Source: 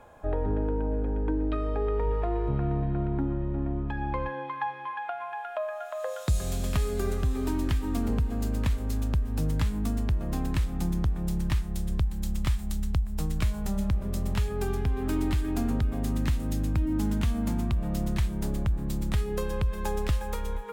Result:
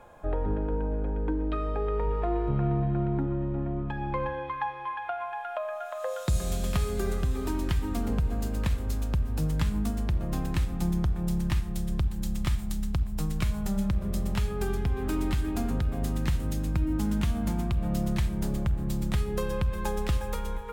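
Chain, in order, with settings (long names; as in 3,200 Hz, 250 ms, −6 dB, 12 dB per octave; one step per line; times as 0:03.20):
rectangular room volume 4,000 cubic metres, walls furnished, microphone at 0.89 metres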